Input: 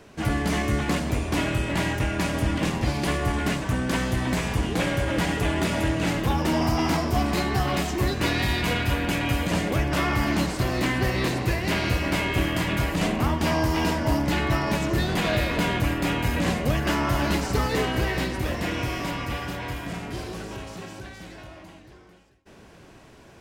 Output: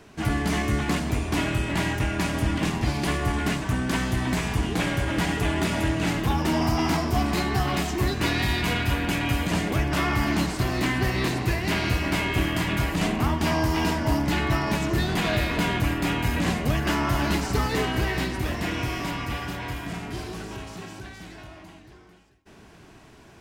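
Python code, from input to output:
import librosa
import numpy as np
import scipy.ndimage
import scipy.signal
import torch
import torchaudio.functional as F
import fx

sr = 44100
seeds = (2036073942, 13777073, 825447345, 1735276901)

y = fx.peak_eq(x, sr, hz=530.0, db=-10.0, octaves=0.2)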